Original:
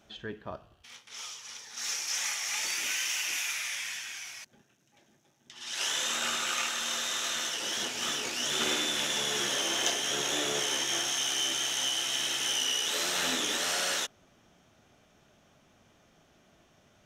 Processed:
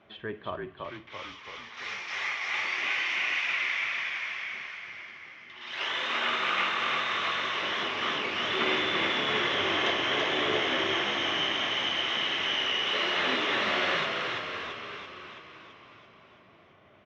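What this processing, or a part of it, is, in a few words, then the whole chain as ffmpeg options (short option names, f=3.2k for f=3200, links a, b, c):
frequency-shifting delay pedal into a guitar cabinet: -filter_complex "[0:a]asplit=9[a][b][c][d][e][f][g][h][i];[b]adelay=334,afreqshift=-46,volume=-3.5dB[j];[c]adelay=668,afreqshift=-92,volume=-8.1dB[k];[d]adelay=1002,afreqshift=-138,volume=-12.7dB[l];[e]adelay=1336,afreqshift=-184,volume=-17.2dB[m];[f]adelay=1670,afreqshift=-230,volume=-21.8dB[n];[g]adelay=2004,afreqshift=-276,volume=-26.4dB[o];[h]adelay=2338,afreqshift=-322,volume=-31dB[p];[i]adelay=2672,afreqshift=-368,volume=-35.6dB[q];[a][j][k][l][m][n][o][p][q]amix=inputs=9:normalize=0,highpass=88,equalizer=f=96:t=q:w=4:g=5,equalizer=f=380:t=q:w=4:g=6,equalizer=f=620:t=q:w=4:g=4,equalizer=f=1.1k:t=q:w=4:g=9,equalizer=f=2.1k:t=q:w=4:g=8,lowpass=f=3.5k:w=0.5412,lowpass=f=3.5k:w=1.3066"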